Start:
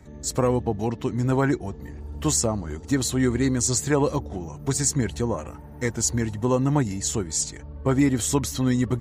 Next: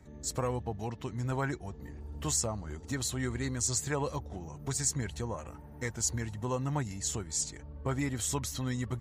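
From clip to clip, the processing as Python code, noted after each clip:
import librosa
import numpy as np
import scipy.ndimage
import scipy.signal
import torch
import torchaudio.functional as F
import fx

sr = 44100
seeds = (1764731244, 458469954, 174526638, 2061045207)

y = fx.dynamic_eq(x, sr, hz=300.0, q=0.85, threshold_db=-35.0, ratio=4.0, max_db=-8)
y = F.gain(torch.from_numpy(y), -7.0).numpy()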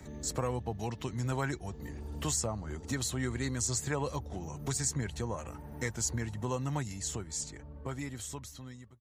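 y = fx.fade_out_tail(x, sr, length_s=2.73)
y = fx.band_squash(y, sr, depth_pct=40)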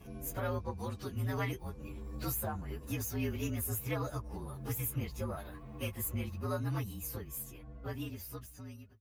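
y = fx.partial_stretch(x, sr, pct=116)
y = fx.cheby_harmonics(y, sr, harmonics=(6,), levels_db=(-32,), full_scale_db=-22.5)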